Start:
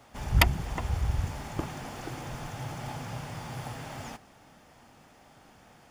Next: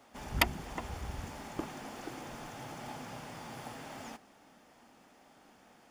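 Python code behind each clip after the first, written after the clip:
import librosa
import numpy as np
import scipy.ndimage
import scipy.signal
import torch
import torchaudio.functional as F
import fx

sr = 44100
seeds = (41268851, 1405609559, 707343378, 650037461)

y = fx.low_shelf_res(x, sr, hz=170.0, db=-8.0, q=1.5)
y = y * librosa.db_to_amplitude(-4.5)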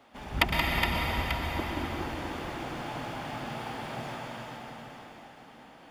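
y = fx.high_shelf_res(x, sr, hz=4700.0, db=-6.5, q=1.5)
y = fx.echo_multitap(y, sr, ms=(72, 109, 177, 416, 890), db=(-19.5, -11.5, -6.5, -5.5, -10.5))
y = fx.rev_plate(y, sr, seeds[0], rt60_s=3.8, hf_ratio=0.85, predelay_ms=105, drr_db=-1.0)
y = y * librosa.db_to_amplitude(2.0)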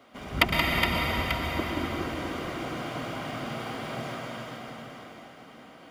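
y = fx.notch_comb(x, sr, f0_hz=870.0)
y = y * librosa.db_to_amplitude(4.0)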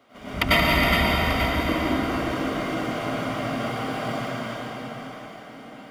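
y = fx.rev_plate(x, sr, seeds[1], rt60_s=0.83, hf_ratio=0.6, predelay_ms=85, drr_db=-8.5)
y = y * librosa.db_to_amplitude(-3.0)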